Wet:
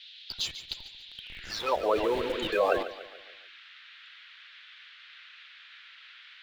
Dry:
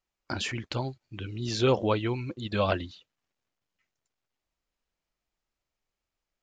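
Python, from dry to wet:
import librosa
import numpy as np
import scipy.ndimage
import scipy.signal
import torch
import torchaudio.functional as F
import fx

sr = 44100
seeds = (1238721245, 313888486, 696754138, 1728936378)

p1 = fx.spec_quant(x, sr, step_db=30)
p2 = fx.low_shelf(p1, sr, hz=120.0, db=-11.0)
p3 = fx.dmg_noise_band(p2, sr, seeds[0], low_hz=1400.0, high_hz=3800.0, level_db=-48.0)
p4 = fx.filter_sweep_highpass(p3, sr, from_hz=3800.0, to_hz=470.0, start_s=1.18, end_s=1.83, q=2.8)
p5 = fx.schmitt(p4, sr, flips_db=-32.5)
p6 = p4 + F.gain(torch.from_numpy(p5), -10.5).numpy()
p7 = fx.echo_feedback(p6, sr, ms=144, feedback_pct=49, wet_db=-12.5)
p8 = fx.env_flatten(p7, sr, amount_pct=50, at=(1.93, 2.83))
y = F.gain(torch.from_numpy(p8), -4.0).numpy()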